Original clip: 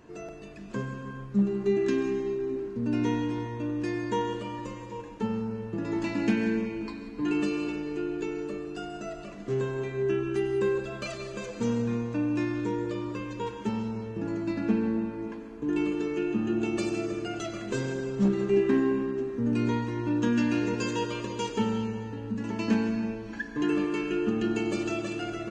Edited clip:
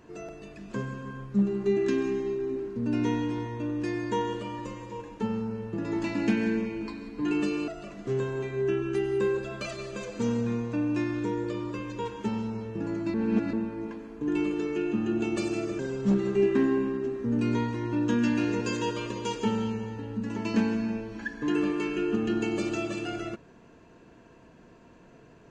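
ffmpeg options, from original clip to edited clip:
-filter_complex "[0:a]asplit=5[s0][s1][s2][s3][s4];[s0]atrim=end=7.682[s5];[s1]atrim=start=9.088:end=14.552[s6];[s2]atrim=start=14.548:end=14.942,asetpts=PTS-STARTPTS,areverse[s7];[s3]atrim=start=14.938:end=17.202[s8];[s4]atrim=start=17.928[s9];[s5][s6]acrossfade=d=0.004:c1=hsin:c2=hsin[s10];[s10][s7]acrossfade=d=0.004:c1=hsin:c2=hsin[s11];[s11][s8]acrossfade=d=0.004:c1=hsin:c2=hsin[s12];[s12][s9]acrossfade=d=0.004:c1=hsin:c2=hsin"

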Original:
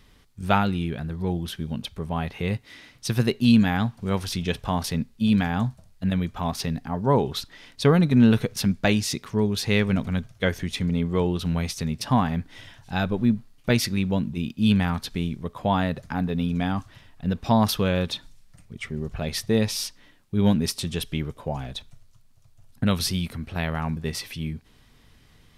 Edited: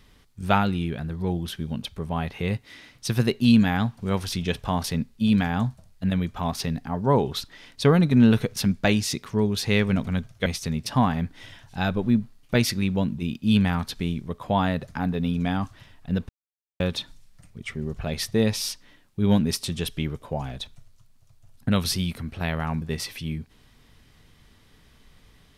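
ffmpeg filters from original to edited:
-filter_complex "[0:a]asplit=4[s0][s1][s2][s3];[s0]atrim=end=10.462[s4];[s1]atrim=start=11.608:end=17.44,asetpts=PTS-STARTPTS,afade=t=out:st=5.828:d=0.004:c=hsin[s5];[s2]atrim=start=17.44:end=17.95,asetpts=PTS-STARTPTS,volume=0[s6];[s3]atrim=start=17.95,asetpts=PTS-STARTPTS,afade=t=in:d=0.004:c=hsin[s7];[s5][s6][s7]concat=n=3:v=0:a=1[s8];[s4][s8]acrossfade=d=0.004:c1=hsin:c2=hsin"

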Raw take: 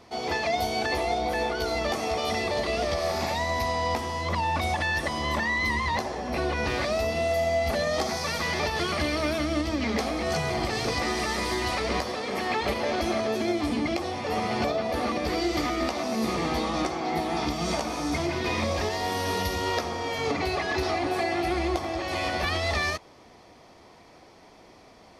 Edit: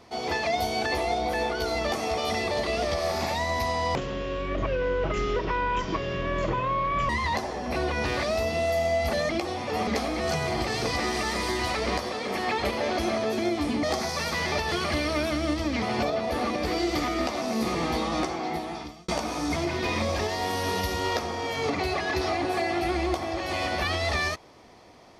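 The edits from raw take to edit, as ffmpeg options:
-filter_complex "[0:a]asplit=8[s0][s1][s2][s3][s4][s5][s6][s7];[s0]atrim=end=3.954[s8];[s1]atrim=start=3.95:end=5.71,asetpts=PTS-STARTPTS,asetrate=24696,aresample=44100[s9];[s2]atrim=start=5.706:end=7.912[s10];[s3]atrim=start=13.858:end=14.442[s11];[s4]atrim=start=9.898:end=13.862[s12];[s5]atrim=start=7.908:end=9.902[s13];[s6]atrim=start=14.438:end=17.7,asetpts=PTS-STARTPTS,afade=t=out:st=2.492:d=0.77[s14];[s7]atrim=start=17.7,asetpts=PTS-STARTPTS,afade=t=in:d=0.004:c=hsin[s15];[s8][s9]acrossfade=d=0.004:c1=hsin:c2=hsin[s16];[s16][s10]acrossfade=d=0.004:c1=hsin:c2=hsin[s17];[s17][s11]acrossfade=d=0.004:c1=hsin:c2=hsin[s18];[s18][s12]acrossfade=d=0.004:c1=hsin:c2=hsin[s19];[s19][s13]acrossfade=d=0.004:c1=hsin:c2=hsin[s20];[s14][s15]concat=n=2:v=0:a=1[s21];[s20][s21]acrossfade=d=0.004:c1=hsin:c2=hsin"

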